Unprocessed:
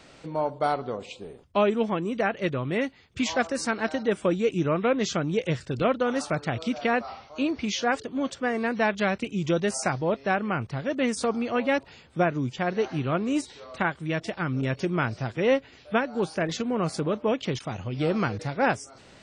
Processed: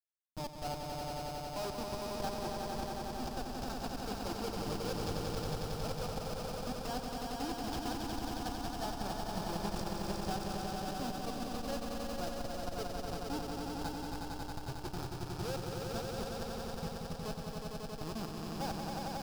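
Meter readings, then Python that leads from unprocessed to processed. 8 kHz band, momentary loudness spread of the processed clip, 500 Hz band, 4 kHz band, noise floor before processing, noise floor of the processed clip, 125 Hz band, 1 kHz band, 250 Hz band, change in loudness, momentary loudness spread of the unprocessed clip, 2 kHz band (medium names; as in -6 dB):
-8.0 dB, 4 LU, -14.5 dB, -7.0 dB, -52 dBFS, -44 dBFS, -10.5 dB, -10.0 dB, -13.0 dB, -12.5 dB, 6 LU, -18.0 dB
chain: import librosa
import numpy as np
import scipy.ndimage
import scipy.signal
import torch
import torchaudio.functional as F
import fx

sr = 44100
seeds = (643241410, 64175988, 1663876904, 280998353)

p1 = fx.bin_expand(x, sr, power=2.0)
p2 = fx.schmitt(p1, sr, flips_db=-27.5)
p3 = fx.graphic_eq_31(p2, sr, hz=(800, 2000, 5000), db=(7, -10, 9))
p4 = p3 + fx.echo_swell(p3, sr, ms=91, loudest=5, wet_db=-4.5, dry=0)
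p5 = fx.transformer_sat(p4, sr, knee_hz=61.0)
y = F.gain(torch.from_numpy(p5), -7.0).numpy()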